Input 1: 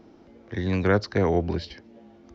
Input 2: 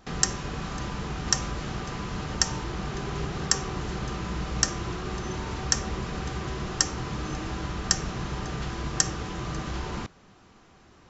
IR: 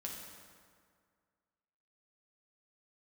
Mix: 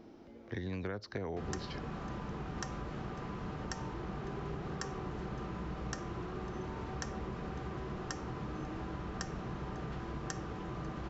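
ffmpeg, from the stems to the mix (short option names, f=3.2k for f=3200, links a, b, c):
-filter_complex "[0:a]acompressor=threshold=-30dB:ratio=6,volume=-3dB[a];[1:a]lowpass=f=1k:p=1,lowshelf=f=120:g=-7,adelay=1300,volume=-4dB[b];[a][b]amix=inputs=2:normalize=0,acompressor=threshold=-36dB:ratio=2.5"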